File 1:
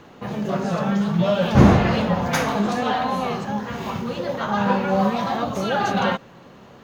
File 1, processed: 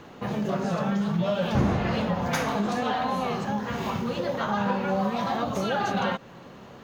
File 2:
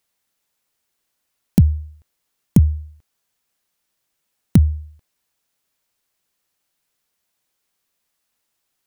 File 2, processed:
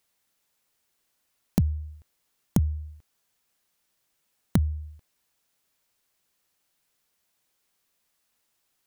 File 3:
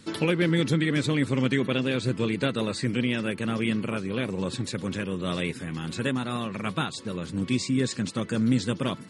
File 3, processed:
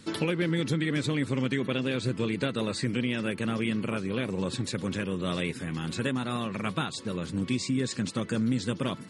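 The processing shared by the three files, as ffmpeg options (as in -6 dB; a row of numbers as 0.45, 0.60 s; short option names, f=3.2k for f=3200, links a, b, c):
-af "acompressor=threshold=-25dB:ratio=2.5"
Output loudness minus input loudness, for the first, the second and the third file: -6.0, -10.5, -2.5 LU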